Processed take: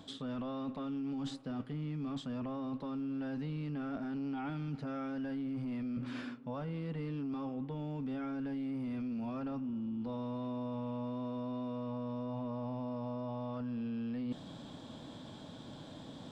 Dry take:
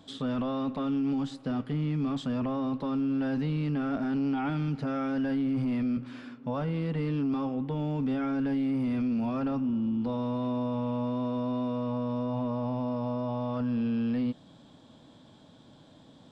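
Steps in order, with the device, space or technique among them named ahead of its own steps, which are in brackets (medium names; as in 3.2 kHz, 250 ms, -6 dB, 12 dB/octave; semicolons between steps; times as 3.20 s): compression on the reversed sound (reverse; compression 6:1, threshold -44 dBFS, peak gain reduction 16 dB; reverse); trim +6 dB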